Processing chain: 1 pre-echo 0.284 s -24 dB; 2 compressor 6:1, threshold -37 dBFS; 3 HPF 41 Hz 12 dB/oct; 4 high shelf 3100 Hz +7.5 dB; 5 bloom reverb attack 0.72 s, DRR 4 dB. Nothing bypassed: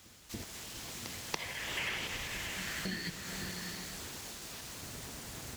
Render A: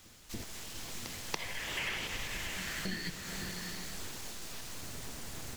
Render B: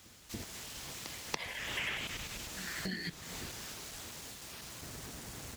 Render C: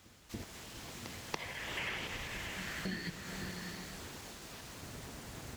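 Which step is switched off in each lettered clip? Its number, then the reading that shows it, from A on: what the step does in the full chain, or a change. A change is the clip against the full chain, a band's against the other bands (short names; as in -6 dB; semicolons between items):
3, crest factor change -2.0 dB; 5, momentary loudness spread change +1 LU; 4, 8 kHz band -6.0 dB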